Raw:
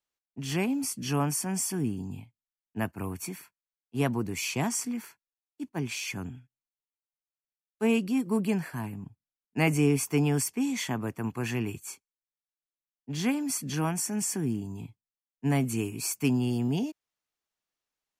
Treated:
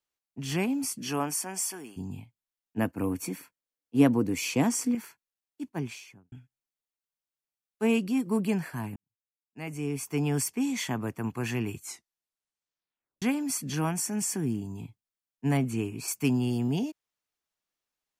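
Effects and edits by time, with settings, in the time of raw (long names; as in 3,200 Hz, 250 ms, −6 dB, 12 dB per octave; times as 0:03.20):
0:00.98–0:01.96: high-pass filter 180 Hz → 740 Hz
0:02.78–0:04.95: hollow resonant body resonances 280/490 Hz, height 11 dB
0:05.68–0:06.32: fade out and dull
0:08.96–0:10.45: fade in quadratic
0:11.78: tape stop 1.44 s
0:15.57–0:16.08: high-shelf EQ 5,400 Hz −11 dB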